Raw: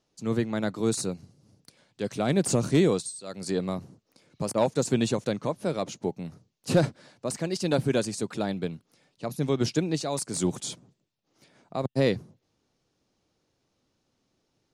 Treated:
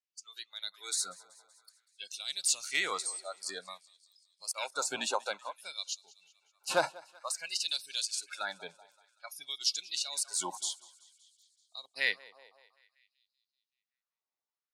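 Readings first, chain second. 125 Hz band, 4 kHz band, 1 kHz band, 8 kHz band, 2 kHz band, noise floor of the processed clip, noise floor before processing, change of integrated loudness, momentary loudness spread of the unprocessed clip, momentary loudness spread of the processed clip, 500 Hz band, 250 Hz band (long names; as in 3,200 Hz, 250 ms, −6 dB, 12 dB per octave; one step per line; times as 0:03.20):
−33.5 dB, +3.5 dB, −3.5 dB, +1.0 dB, +2.0 dB, below −85 dBFS, −76 dBFS, −6.0 dB, 12 LU, 15 LU, −14.5 dB, −26.5 dB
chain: sub-octave generator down 2 octaves, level −3 dB
noise reduction from a noise print of the clip's start 24 dB
low-shelf EQ 260 Hz +6 dB
feedback echo with a high-pass in the loop 190 ms, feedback 59%, high-pass 450 Hz, level −22 dB
auto-filter high-pass sine 0.54 Hz 870–4,200 Hz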